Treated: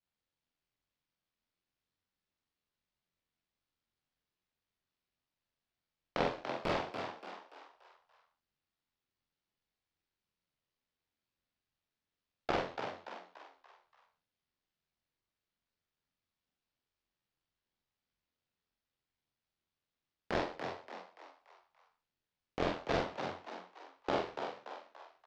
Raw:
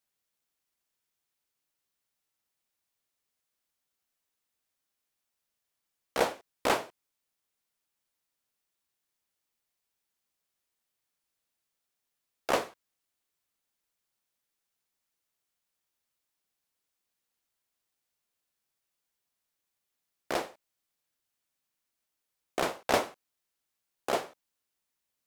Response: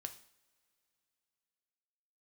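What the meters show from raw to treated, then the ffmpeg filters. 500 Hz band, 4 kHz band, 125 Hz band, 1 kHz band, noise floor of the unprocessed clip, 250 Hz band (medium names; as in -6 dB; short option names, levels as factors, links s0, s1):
-4.0 dB, -5.5 dB, +4.0 dB, -4.0 dB, -85 dBFS, -1.0 dB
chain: -filter_complex "[0:a]lowpass=f=4900:w=0.5412,lowpass=f=4900:w=1.3066,agate=range=0.501:threshold=0.002:ratio=16:detection=peak,lowshelf=f=200:g=11.5,acompressor=threshold=0.0316:ratio=6,flanger=delay=19.5:depth=5.2:speed=2,aeval=exprs='val(0)*sin(2*PI*42*n/s)':c=same,asplit=2[s0][s1];[s1]adelay=44,volume=0.75[s2];[s0][s2]amix=inputs=2:normalize=0,asplit=6[s3][s4][s5][s6][s7][s8];[s4]adelay=288,afreqshift=90,volume=0.447[s9];[s5]adelay=576,afreqshift=180,volume=0.193[s10];[s6]adelay=864,afreqshift=270,volume=0.0822[s11];[s7]adelay=1152,afreqshift=360,volume=0.0355[s12];[s8]adelay=1440,afreqshift=450,volume=0.0153[s13];[s3][s9][s10][s11][s12][s13]amix=inputs=6:normalize=0,volume=1.88"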